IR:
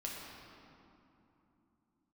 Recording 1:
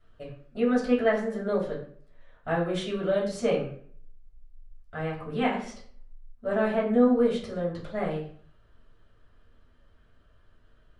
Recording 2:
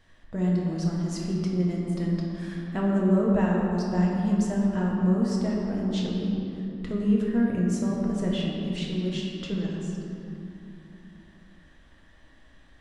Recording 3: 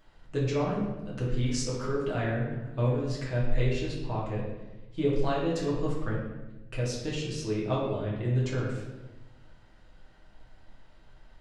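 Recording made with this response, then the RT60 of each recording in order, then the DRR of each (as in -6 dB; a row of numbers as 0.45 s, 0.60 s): 2; 0.55 s, 3.0 s, 1.1 s; -7.0 dB, -4.0 dB, -6.0 dB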